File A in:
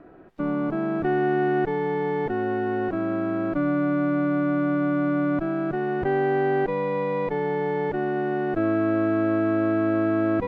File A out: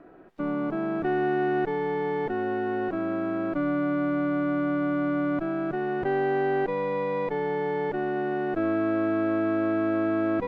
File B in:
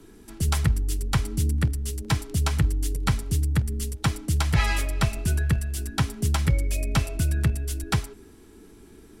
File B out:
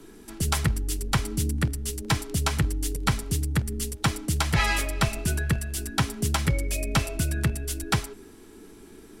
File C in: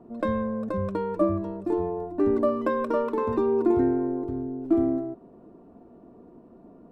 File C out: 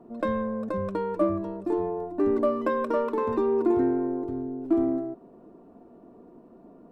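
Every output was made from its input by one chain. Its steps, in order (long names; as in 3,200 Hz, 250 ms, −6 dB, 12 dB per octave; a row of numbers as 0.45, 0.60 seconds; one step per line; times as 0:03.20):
parametric band 63 Hz −7.5 dB 2.4 octaves
in parallel at −10.5 dB: soft clipping −22.5 dBFS
on the sum: loudness normalisation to −27 LKFS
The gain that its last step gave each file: −3.5, +1.0, −1.5 decibels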